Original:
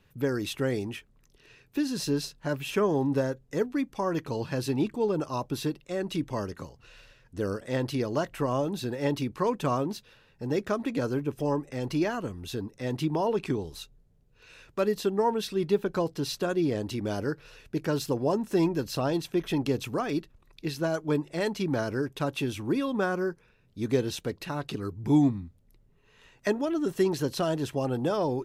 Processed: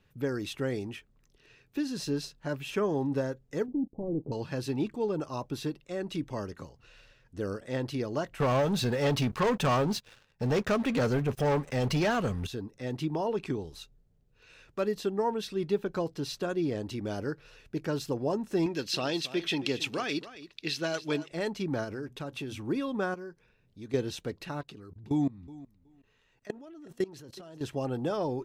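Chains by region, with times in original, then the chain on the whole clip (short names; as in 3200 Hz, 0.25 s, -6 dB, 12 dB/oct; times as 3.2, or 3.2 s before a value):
3.68–4.32 low shelf 150 Hz -10 dB + sample leveller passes 3 + Gaussian blur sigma 18 samples
8.4–12.47 bell 320 Hz -13 dB 0.38 oct + sample leveller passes 3
18.66–21.32 weighting filter D + echo 0.275 s -15 dB
21.84–22.6 notches 60/120/180/240 Hz + compressor 4:1, threshold -30 dBFS
23.14–23.94 notch 1300 Hz, Q 15 + dynamic EQ 4100 Hz, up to +4 dB, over -54 dBFS, Q 0.76 + compressor 1.5:1, threshold -53 dBFS
24.61–27.61 level quantiser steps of 22 dB + feedback echo 0.371 s, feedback 16%, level -19 dB
whole clip: bell 12000 Hz -5.5 dB 0.83 oct; notch 1000 Hz, Q 22; gain -3.5 dB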